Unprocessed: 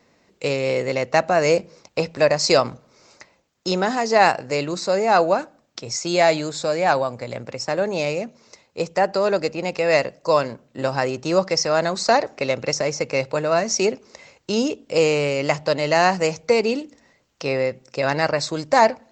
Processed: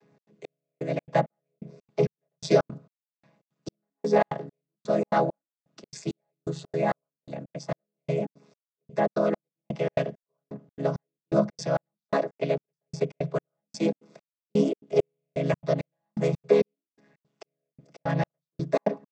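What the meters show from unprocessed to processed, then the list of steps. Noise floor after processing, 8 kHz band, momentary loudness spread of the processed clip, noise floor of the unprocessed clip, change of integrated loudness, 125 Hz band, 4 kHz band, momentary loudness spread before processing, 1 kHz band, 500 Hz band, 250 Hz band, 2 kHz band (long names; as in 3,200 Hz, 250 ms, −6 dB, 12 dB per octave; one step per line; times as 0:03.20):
below −85 dBFS, −19.0 dB, 17 LU, −63 dBFS, −7.5 dB, −1.5 dB, −18.0 dB, 11 LU, −12.0 dB, −7.5 dB, −4.5 dB, −15.0 dB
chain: channel vocoder with a chord as carrier minor triad, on C#3
gate pattern "xx.xx...." 167 BPM −60 dB
level −3 dB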